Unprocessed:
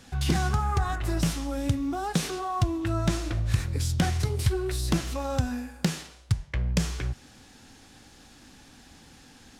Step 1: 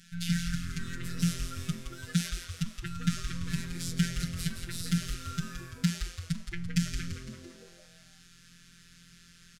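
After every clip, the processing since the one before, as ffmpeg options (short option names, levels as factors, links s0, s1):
-filter_complex "[0:a]afftfilt=real='hypot(re,im)*cos(PI*b)':imag='0':win_size=1024:overlap=0.75,afftfilt=real='re*(1-between(b*sr/4096,290,1300))':imag='im*(1-between(b*sr/4096,290,1300))':win_size=4096:overlap=0.75,asplit=7[s0][s1][s2][s3][s4][s5][s6];[s1]adelay=169,afreqshift=-130,volume=0.422[s7];[s2]adelay=338,afreqshift=-260,volume=0.211[s8];[s3]adelay=507,afreqshift=-390,volume=0.106[s9];[s4]adelay=676,afreqshift=-520,volume=0.0525[s10];[s5]adelay=845,afreqshift=-650,volume=0.0263[s11];[s6]adelay=1014,afreqshift=-780,volume=0.0132[s12];[s0][s7][s8][s9][s10][s11][s12]amix=inputs=7:normalize=0"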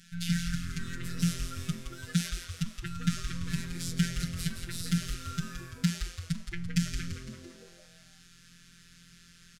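-af anull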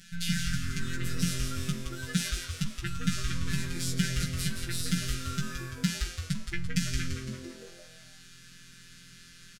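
-filter_complex "[0:a]asplit=2[s0][s1];[s1]alimiter=limit=0.112:level=0:latency=1:release=108,volume=0.75[s2];[s0][s2]amix=inputs=2:normalize=0,asplit=2[s3][s4];[s4]adelay=15,volume=0.631[s5];[s3][s5]amix=inputs=2:normalize=0,volume=0.841"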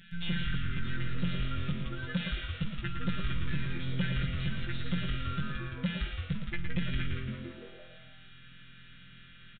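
-af "aresample=8000,asoftclip=type=tanh:threshold=0.0668,aresample=44100,aecho=1:1:114:0.422"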